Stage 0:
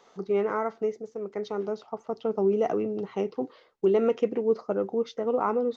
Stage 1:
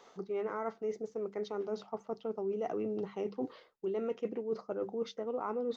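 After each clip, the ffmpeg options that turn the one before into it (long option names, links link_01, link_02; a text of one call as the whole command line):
ffmpeg -i in.wav -af "bandreject=frequency=50:width_type=h:width=6,bandreject=frequency=100:width_type=h:width=6,bandreject=frequency=150:width_type=h:width=6,bandreject=frequency=200:width_type=h:width=6,areverse,acompressor=threshold=-33dB:ratio=6,areverse" out.wav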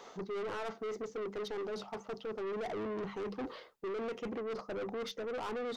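ffmpeg -i in.wav -af "aeval=exprs='(tanh(141*val(0)+0.1)-tanh(0.1))/141':channel_layout=same,volume=7dB" out.wav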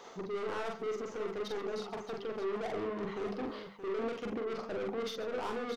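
ffmpeg -i in.wav -af "aecho=1:1:44|134|624:0.668|0.178|0.316" out.wav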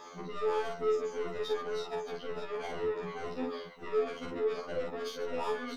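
ffmpeg -i in.wav -af "afftfilt=real='re*pow(10,10/40*sin(2*PI*(2*log(max(b,1)*sr/1024/100)/log(2)-(-2)*(pts-256)/sr)))':imag='im*pow(10,10/40*sin(2*PI*(2*log(max(b,1)*sr/1024/100)/log(2)-(-2)*(pts-256)/sr)))':win_size=1024:overlap=0.75,afftfilt=real='re*2*eq(mod(b,4),0)':imag='im*2*eq(mod(b,4),0)':win_size=2048:overlap=0.75,volume=3dB" out.wav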